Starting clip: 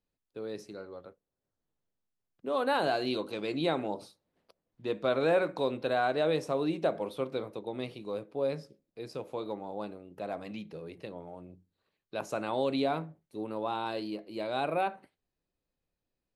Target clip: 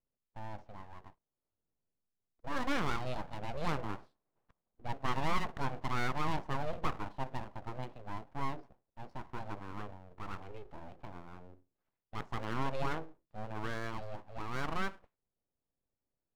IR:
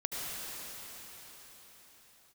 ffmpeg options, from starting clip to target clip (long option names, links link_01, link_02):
-af "adynamicsmooth=sensitivity=2:basefreq=1300,aeval=exprs='abs(val(0))':channel_layout=same,volume=-2dB"